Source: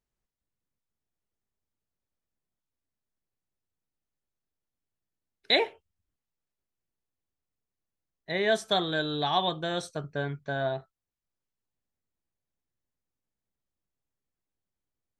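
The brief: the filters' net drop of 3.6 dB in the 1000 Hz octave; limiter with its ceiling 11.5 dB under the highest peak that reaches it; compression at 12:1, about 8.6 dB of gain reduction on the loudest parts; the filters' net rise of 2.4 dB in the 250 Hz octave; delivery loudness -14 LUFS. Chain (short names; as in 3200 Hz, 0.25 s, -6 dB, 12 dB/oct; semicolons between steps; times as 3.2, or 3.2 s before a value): bell 250 Hz +4 dB; bell 1000 Hz -6 dB; compressor 12:1, threshold -28 dBFS; gain +23 dB; limiter -3 dBFS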